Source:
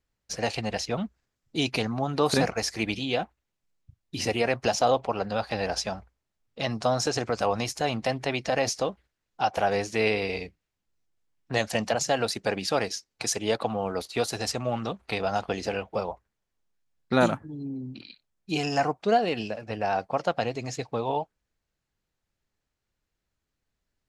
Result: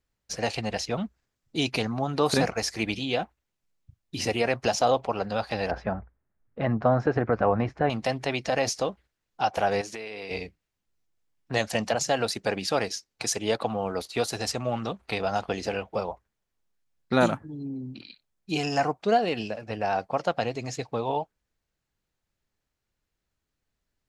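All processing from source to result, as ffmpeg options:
-filter_complex "[0:a]asettb=1/sr,asplit=3[s0][s1][s2];[s0]atrim=end=5.714[s3];[s1]atrim=start=5.71:end=7.9,asetpts=PTS-STARTPTS,afade=t=in:d=0.004:c=qsin,afade=t=out:st=2.186:d=0.004:c=qsin,lowpass=f=1700:t=q:w=2.2,tiltshelf=f=770:g=6.5[s4];[s2]atrim=start=7.896[s5];[s3][s4]acrossfade=d=0.004:c1=hsin:c2=qsin[s6];[s6][s5]acrossfade=d=0.004:c1=qsin:c2=hsin,asettb=1/sr,asplit=3[s7][s8][s9];[s7]atrim=end=9.814[s10];[s8]atrim=start=9.81:end=10.31,asetpts=PTS-STARTPTS,afade=t=in:d=0.004:c=qsin,afade=t=out:st=0.496:d=0.004:c=qsin,highpass=f=260:p=1,acompressor=threshold=0.0224:ratio=10:attack=3.2:release=140:knee=1:detection=peak[s11];[s9]atrim=start=10.306[s12];[s10][s11]acrossfade=d=0.004:c1=hsin:c2=qsin[s13];[s13][s12]acrossfade=d=0.004:c1=qsin:c2=hsin"

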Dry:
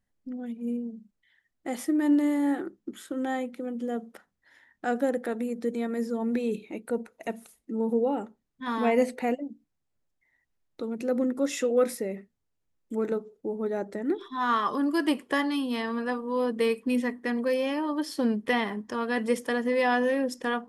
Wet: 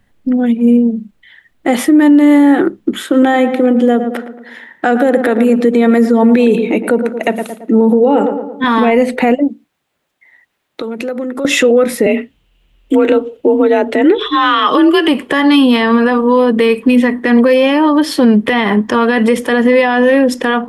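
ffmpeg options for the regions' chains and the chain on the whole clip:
-filter_complex "[0:a]asettb=1/sr,asplit=3[s0][s1][s2];[s0]atrim=end=3.024[s3];[s1]atrim=start=3.02:end=8.64,asetpts=PTS-STARTPTS,afade=t=in:d=0.004:c=qsin,afade=t=out:st=5.616:d=0.004:c=qsin,highpass=170,asplit=2[s4][s5];[s5]adelay=112,lowpass=f=1500:p=1,volume=0.299,asplit=2[s6][s7];[s7]adelay=112,lowpass=f=1500:p=1,volume=0.52,asplit=2[s8][s9];[s9]adelay=112,lowpass=f=1500:p=1,volume=0.52,asplit=2[s10][s11];[s11]adelay=112,lowpass=f=1500:p=1,volume=0.52,asplit=2[s12][s13];[s13]adelay=112,lowpass=f=1500:p=1,volume=0.52,asplit=2[s14][s15];[s15]adelay=112,lowpass=f=1500:p=1,volume=0.52[s16];[s4][s6][s8][s10][s12][s14][s16]amix=inputs=7:normalize=0,atrim=end_sample=247842[s17];[s2]atrim=start=8.636[s18];[s3][s17]acrossfade=d=0.004:c1=hsin:c2=qsin[s19];[s19][s18]acrossfade=d=0.004:c1=qsin:c2=hsin,asettb=1/sr,asplit=3[s20][s21][s22];[s20]atrim=end=9.484[s23];[s21]atrim=start=9.48:end=11.45,asetpts=PTS-STARTPTS,afade=t=in:d=0.004:c=qsin,afade=t=out:st=1.966:d=0.004:c=qsin,highpass=f=530:p=1,acompressor=threshold=0.00891:ratio=6:attack=3.2:release=140:knee=1:detection=peak[s24];[s22]atrim=start=11.446[s25];[s23][s24]acrossfade=d=0.004:c1=hsin:c2=qsin[s26];[s26][s25]acrossfade=d=0.004:c1=qsin:c2=hsin,asettb=1/sr,asplit=3[s27][s28][s29];[s27]atrim=end=12.064[s30];[s28]atrim=start=12.06:end=15.08,asetpts=PTS-STARTPTS,afade=t=in:d=0.004:c=qsin,afade=t=out:st=3.016:d=0.004:c=qsin,afreqshift=41,equalizer=f=2900:t=o:w=0.54:g=13.5[s31];[s29]atrim=start=15.076[s32];[s30][s31]acrossfade=d=0.004:c1=hsin:c2=qsin[s33];[s33][s32]acrossfade=d=0.004:c1=qsin:c2=hsin,highshelf=f=4200:t=q:w=1.5:g=-6,acrossover=split=140[s34][s35];[s35]acompressor=threshold=0.0447:ratio=6[s36];[s34][s36]amix=inputs=2:normalize=0,alimiter=level_in=16.8:limit=0.891:release=50:level=0:latency=1,volume=0.891"

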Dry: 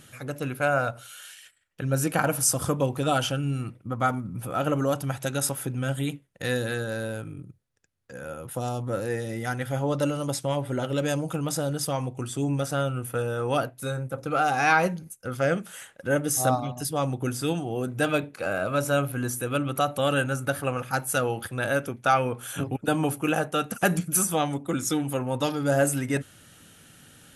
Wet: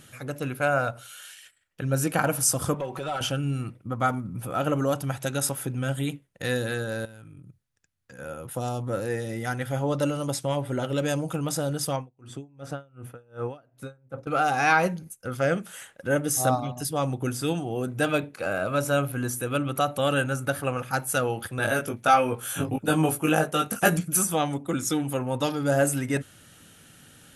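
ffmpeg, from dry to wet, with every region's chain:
-filter_complex "[0:a]asettb=1/sr,asplit=3[s0][s1][s2];[s0]atrim=end=2.744[s3];[s1]atrim=start=2.74:end=3.21,asetpts=PTS-STARTPTS,afade=t=in:d=0.004:c=qsin,afade=t=out:st=0.466:d=0.004:c=qsin,aecho=1:1:5.3:0.46,atrim=end_sample=20727,acompressor=threshold=0.0282:ratio=3:attack=3.2:release=140:knee=1:detection=peak,asplit=2[s4][s5];[s5]highpass=f=720:p=1,volume=4.47,asoftclip=type=tanh:threshold=0.0944[s6];[s4][s6]amix=inputs=2:normalize=0,lowpass=f=2300:p=1,volume=0.501[s7];[s2]atrim=start=3.206[s8];[s3][s7]acrossfade=d=0.004:c1=hsin:c2=qsin[s9];[s9][s8]acrossfade=d=0.004:c1=qsin:c2=hsin,asettb=1/sr,asplit=3[s10][s11][s12];[s10]atrim=end=7.054[s13];[s11]atrim=start=7.05:end=8.19,asetpts=PTS-STARTPTS,afade=t=in:d=0.004:c=qsin,afade=t=out:st=1.136:d=0.004:c=qsin,equalizer=f=460:t=o:w=1.4:g=-7,acompressor=threshold=0.00794:ratio=12:attack=3.2:release=140:knee=1:detection=peak[s14];[s12]atrim=start=8.186[s15];[s13][s14]acrossfade=d=0.004:c1=hsin:c2=qsin[s16];[s16][s15]acrossfade=d=0.004:c1=qsin:c2=hsin,asettb=1/sr,asplit=3[s17][s18][s19];[s17]atrim=end=11.964[s20];[s18]atrim=start=11.96:end=14.27,asetpts=PTS-STARTPTS,afade=t=in:d=0.004:c=qsin,afade=t=out:st=2.306:d=0.004:c=qsin,lowpass=f=2100:p=1,aeval=exprs='val(0)*pow(10,-32*(0.5-0.5*cos(2*PI*2.7*n/s))/20)':c=same[s21];[s19]atrim=start=14.266[s22];[s20][s21]acrossfade=d=0.004:c1=hsin:c2=qsin[s23];[s23][s22]acrossfade=d=0.004:c1=qsin:c2=hsin,asettb=1/sr,asplit=3[s24][s25][s26];[s24]atrim=end=21.574[s27];[s25]atrim=start=21.57:end=23.97,asetpts=PTS-STARTPTS,afade=t=in:d=0.004:c=qsin,afade=t=out:st=2.396:d=0.004:c=qsin,highshelf=f=8800:g=5.5,asplit=2[s28][s29];[s29]adelay=19,volume=0.708[s30];[s28][s30]amix=inputs=2:normalize=0,atrim=end_sample=105840[s31];[s26]atrim=start=23.966[s32];[s27][s31]acrossfade=d=0.004:c1=hsin:c2=qsin[s33];[s33][s32]acrossfade=d=0.004:c1=qsin:c2=hsin"

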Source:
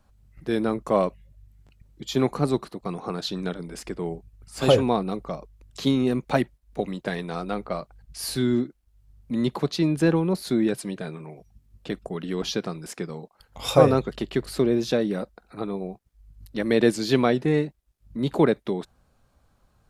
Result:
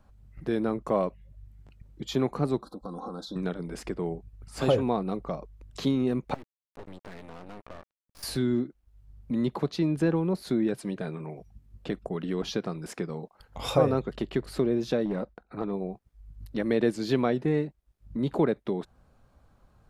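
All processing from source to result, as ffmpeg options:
-filter_complex "[0:a]asettb=1/sr,asplit=3[s0][s1][s2];[s0]atrim=end=2.624[s3];[s1]atrim=start=2.62:end=3.36,asetpts=PTS-STARTPTS,afade=t=in:d=0.004:c=qsin,afade=t=out:st=0.736:d=0.004:c=qsin,aecho=1:1:3.8:0.74,atrim=end_sample=32634,acompressor=threshold=0.0158:ratio=5:attack=3.2:release=140:knee=1:detection=peak,asuperstop=centerf=2300:order=12:qfactor=1.2[s4];[s2]atrim=start=3.356[s5];[s3][s4]acrossfade=d=0.004:c1=hsin:c2=qsin[s6];[s6][s5]acrossfade=d=0.004:c1=qsin:c2=hsin,asettb=1/sr,asplit=3[s7][s8][s9];[s7]atrim=end=6.344[s10];[s8]atrim=start=6.34:end=8.23,asetpts=PTS-STARTPTS,afade=t=in:d=0.004:c=qsin,afade=t=out:st=1.886:d=0.004:c=qsin,aeval=exprs='(tanh(35.5*val(0)+0.75)-tanh(0.75))/35.5':c=same,acompressor=threshold=0.01:ratio=2.5:attack=3.2:release=140:knee=1:detection=peak,aeval=exprs='sgn(val(0))*max(abs(val(0))-0.00501,0)':c=same[s11];[s9]atrim=start=8.226[s12];[s10][s11]acrossfade=d=0.004:c1=hsin:c2=qsin[s13];[s13][s12]acrossfade=d=0.004:c1=qsin:c2=hsin,asettb=1/sr,asplit=3[s14][s15][s16];[s14]atrim=end=15.054[s17];[s15]atrim=start=15.05:end=15.73,asetpts=PTS-STARTPTS,afade=t=in:d=0.004:c=qsin,afade=t=out:st=0.676:d=0.004:c=qsin,lowpass=f=3500:p=1,aeval=exprs='clip(val(0),-1,0.0708)':c=same,agate=range=0.251:threshold=0.00141:ratio=16:release=100:detection=peak[s18];[s16]atrim=start=15.726[s19];[s17][s18]acrossfade=d=0.004:c1=hsin:c2=qsin[s20];[s20][s19]acrossfade=d=0.004:c1=qsin:c2=hsin,highshelf=f=2700:g=-8.5,acompressor=threshold=0.0141:ratio=1.5,volume=1.41"

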